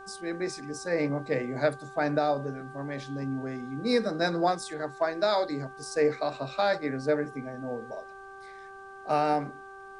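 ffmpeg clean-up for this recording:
-af "bandreject=f=389.8:t=h:w=4,bandreject=f=779.6:t=h:w=4,bandreject=f=1169.4:t=h:w=4,bandreject=f=1559.2:t=h:w=4,agate=range=0.0891:threshold=0.0126"

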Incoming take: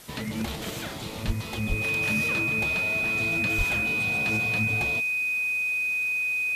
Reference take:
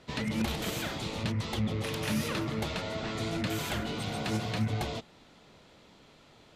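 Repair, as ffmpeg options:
-filter_complex "[0:a]bandreject=f=2500:w=30,asplit=3[s0][s1][s2];[s0]afade=t=out:st=1.26:d=0.02[s3];[s1]highpass=f=140:w=0.5412,highpass=f=140:w=1.3066,afade=t=in:st=1.26:d=0.02,afade=t=out:st=1.38:d=0.02[s4];[s2]afade=t=in:st=1.38:d=0.02[s5];[s3][s4][s5]amix=inputs=3:normalize=0,asplit=3[s6][s7][s8];[s6]afade=t=out:st=1.68:d=0.02[s9];[s7]highpass=f=140:w=0.5412,highpass=f=140:w=1.3066,afade=t=in:st=1.68:d=0.02,afade=t=out:st=1.8:d=0.02[s10];[s8]afade=t=in:st=1.8:d=0.02[s11];[s9][s10][s11]amix=inputs=3:normalize=0,asplit=3[s12][s13][s14];[s12]afade=t=out:st=3.57:d=0.02[s15];[s13]highpass=f=140:w=0.5412,highpass=f=140:w=1.3066,afade=t=in:st=3.57:d=0.02,afade=t=out:st=3.69:d=0.02[s16];[s14]afade=t=in:st=3.69:d=0.02[s17];[s15][s16][s17]amix=inputs=3:normalize=0,afwtdn=0.0045"

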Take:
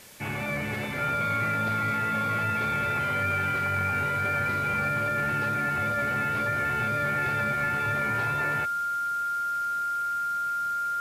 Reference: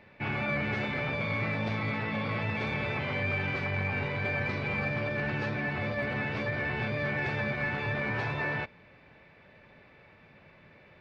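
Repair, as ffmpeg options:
-af "adeclick=t=4,bandreject=f=1400:w=30,afwtdn=0.0035"

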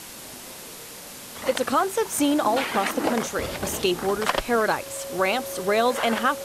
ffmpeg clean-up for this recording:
-af "bandreject=f=550:w=30,afwtdn=0.011"

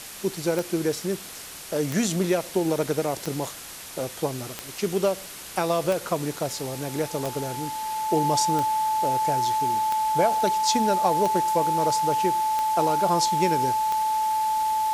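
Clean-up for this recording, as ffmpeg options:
-af "adeclick=t=4,bandreject=f=870:w=30,afwtdn=0.013"

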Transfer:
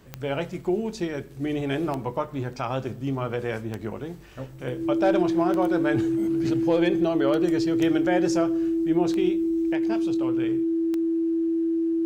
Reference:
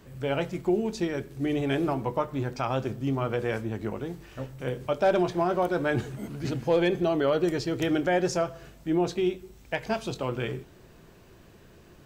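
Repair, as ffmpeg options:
-af "adeclick=t=4,bandreject=f=330:w=30,asetnsamples=n=441:p=0,asendcmd='9.73 volume volume 5dB',volume=1"

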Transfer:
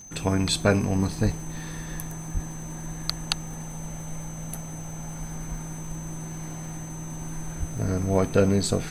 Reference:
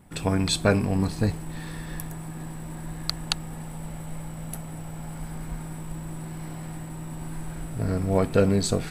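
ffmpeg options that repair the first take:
-filter_complex "[0:a]adeclick=t=4,bandreject=f=6200:w=30,asplit=3[s0][s1][s2];[s0]afade=t=out:st=1.24:d=0.02[s3];[s1]highpass=f=140:w=0.5412,highpass=f=140:w=1.3066,afade=t=in:st=1.24:d=0.02,afade=t=out:st=1.36:d=0.02[s4];[s2]afade=t=in:st=1.36:d=0.02[s5];[s3][s4][s5]amix=inputs=3:normalize=0,asplit=3[s6][s7][s8];[s6]afade=t=out:st=2.33:d=0.02[s9];[s7]highpass=f=140:w=0.5412,highpass=f=140:w=1.3066,afade=t=in:st=2.33:d=0.02,afade=t=out:st=2.45:d=0.02[s10];[s8]afade=t=in:st=2.45:d=0.02[s11];[s9][s10][s11]amix=inputs=3:normalize=0,asplit=3[s12][s13][s14];[s12]afade=t=out:st=7.59:d=0.02[s15];[s13]highpass=f=140:w=0.5412,highpass=f=140:w=1.3066,afade=t=in:st=7.59:d=0.02,afade=t=out:st=7.71:d=0.02[s16];[s14]afade=t=in:st=7.71:d=0.02[s17];[s15][s16][s17]amix=inputs=3:normalize=0"

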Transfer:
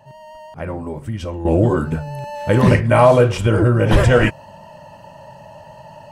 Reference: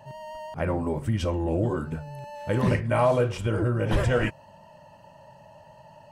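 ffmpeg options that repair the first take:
-af "asetnsamples=n=441:p=0,asendcmd='1.45 volume volume -10.5dB',volume=1"

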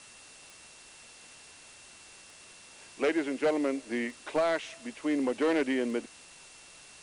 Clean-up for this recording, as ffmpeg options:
-af "adeclick=t=4,bandreject=f=2700:w=30,afwtdn=0.0032"

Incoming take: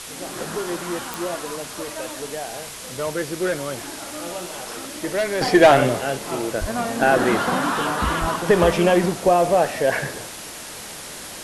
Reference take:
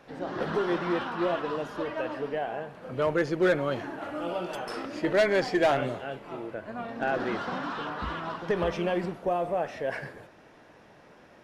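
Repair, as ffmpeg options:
-filter_complex "[0:a]adeclick=t=4,asplit=3[s0][s1][s2];[s0]afade=t=out:st=6.6:d=0.02[s3];[s1]highpass=f=140:w=0.5412,highpass=f=140:w=1.3066,afade=t=in:st=6.6:d=0.02,afade=t=out:st=6.72:d=0.02[s4];[s2]afade=t=in:st=6.72:d=0.02[s5];[s3][s4][s5]amix=inputs=3:normalize=0,asplit=3[s6][s7][s8];[s6]afade=t=out:st=8.2:d=0.02[s9];[s7]highpass=f=140:w=0.5412,highpass=f=140:w=1.3066,afade=t=in:st=8.2:d=0.02,afade=t=out:st=8.32:d=0.02[s10];[s8]afade=t=in:st=8.32:d=0.02[s11];[s9][s10][s11]amix=inputs=3:normalize=0,afwtdn=0.02,asetnsamples=n=441:p=0,asendcmd='5.41 volume volume -11.5dB',volume=1"

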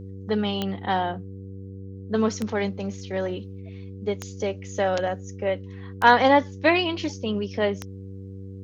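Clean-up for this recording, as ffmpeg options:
-af "adeclick=t=4,bandreject=f=96.5:t=h:w=4,bandreject=f=193:t=h:w=4,bandreject=f=289.5:t=h:w=4,bandreject=f=386:t=h:w=4,bandreject=f=482.5:t=h:w=4"

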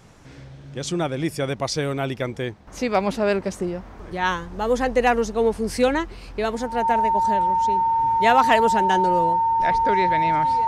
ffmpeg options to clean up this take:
-af "bandreject=f=910:w=30"

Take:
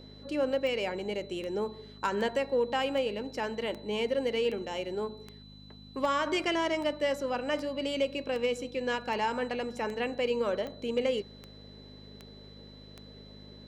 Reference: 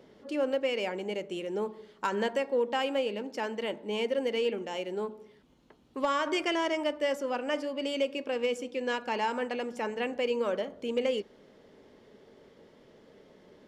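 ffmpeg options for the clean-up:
-af "adeclick=t=4,bandreject=f=51.1:t=h:w=4,bandreject=f=102.2:t=h:w=4,bandreject=f=153.3:t=h:w=4,bandreject=f=204.4:t=h:w=4,bandreject=f=255.5:t=h:w=4,bandreject=f=4000:w=30"

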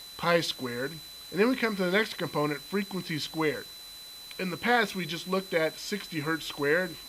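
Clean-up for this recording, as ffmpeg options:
-af "adeclick=t=4,bandreject=f=4000:w=30,afwtdn=0.0035"

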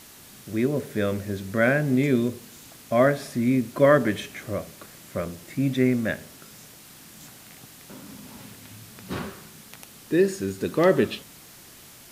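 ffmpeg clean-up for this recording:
-af "afftdn=nr=21:nf=-48"

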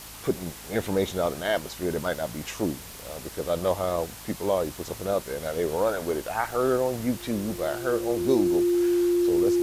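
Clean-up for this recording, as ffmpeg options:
-af "adeclick=t=4,bandreject=f=52.7:t=h:w=4,bandreject=f=105.4:t=h:w=4,bandreject=f=158.1:t=h:w=4,bandreject=f=210.8:t=h:w=4,bandreject=f=263.5:t=h:w=4,bandreject=f=350:w=30,afftdn=nr=30:nf=-41"

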